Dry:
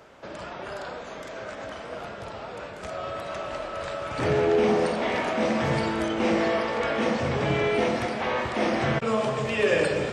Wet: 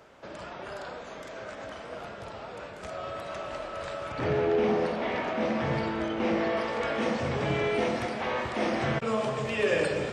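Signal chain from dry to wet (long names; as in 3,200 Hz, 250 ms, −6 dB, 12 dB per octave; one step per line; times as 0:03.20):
0:04.12–0:06.57: high-frequency loss of the air 110 metres
level −3.5 dB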